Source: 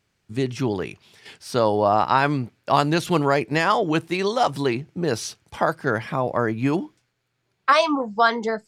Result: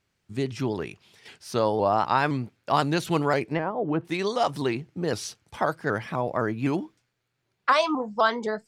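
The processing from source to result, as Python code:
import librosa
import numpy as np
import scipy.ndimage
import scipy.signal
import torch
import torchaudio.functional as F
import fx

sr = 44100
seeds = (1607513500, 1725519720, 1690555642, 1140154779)

y = fx.env_lowpass_down(x, sr, base_hz=420.0, full_db=-14.0, at=(3.43, 4.05))
y = fx.vibrato_shape(y, sr, shape='saw_up', rate_hz=3.9, depth_cents=100.0)
y = y * 10.0 ** (-4.0 / 20.0)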